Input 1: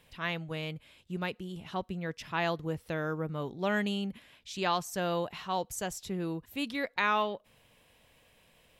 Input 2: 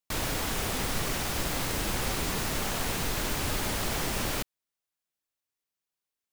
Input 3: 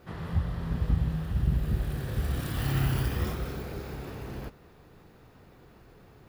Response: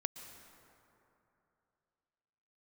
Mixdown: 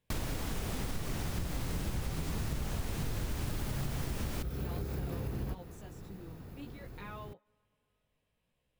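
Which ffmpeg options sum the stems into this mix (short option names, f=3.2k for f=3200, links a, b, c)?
-filter_complex "[0:a]flanger=delay=15.5:depth=4.9:speed=0.57,volume=-19dB,asplit=2[a][b];[b]volume=-20.5dB[c];[1:a]volume=-4.5dB[d];[2:a]acompressor=threshold=-38dB:ratio=3,highshelf=f=7.1k:g=11,adelay=1050,volume=-1.5dB[e];[3:a]atrim=start_sample=2205[f];[c][f]afir=irnorm=-1:irlink=0[g];[a][d][e][g]amix=inputs=4:normalize=0,lowshelf=f=350:g=10.5,acompressor=threshold=-32dB:ratio=6"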